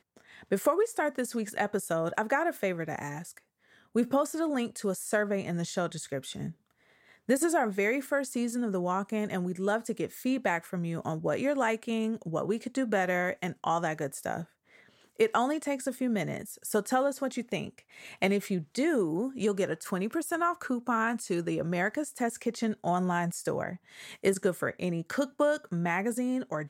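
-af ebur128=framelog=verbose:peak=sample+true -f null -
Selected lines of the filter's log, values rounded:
Integrated loudness:
  I:         -30.6 LUFS
  Threshold: -41.0 LUFS
Loudness range:
  LRA:         1.6 LU
  Threshold: -51.1 LUFS
  LRA low:   -31.8 LUFS
  LRA high:  -30.3 LUFS
Sample peak:
  Peak:      -13.7 dBFS
True peak:
  Peak:      -13.7 dBFS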